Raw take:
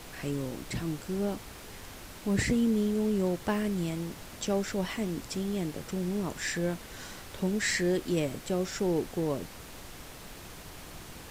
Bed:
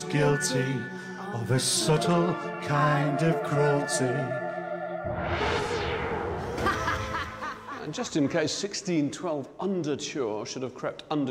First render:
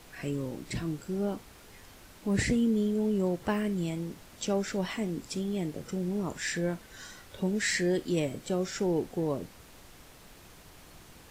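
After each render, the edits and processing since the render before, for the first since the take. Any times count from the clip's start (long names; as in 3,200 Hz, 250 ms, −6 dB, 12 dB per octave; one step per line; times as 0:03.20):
noise reduction from a noise print 7 dB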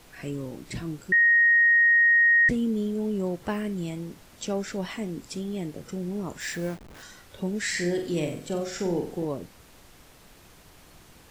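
0:01.12–0:02.49: beep over 1,870 Hz −15.5 dBFS
0:06.40–0:07.03: hold until the input has moved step −40.5 dBFS
0:07.72–0:09.25: flutter between parallel walls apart 7.9 metres, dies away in 0.46 s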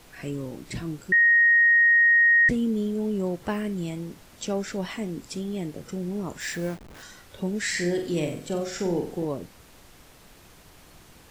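level +1 dB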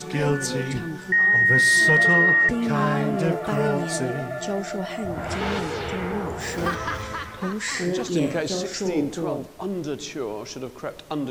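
mix in bed 0 dB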